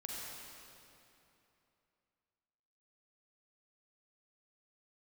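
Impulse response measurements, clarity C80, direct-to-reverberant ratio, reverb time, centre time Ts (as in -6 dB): -1.5 dB, -4.0 dB, 2.9 s, 0.174 s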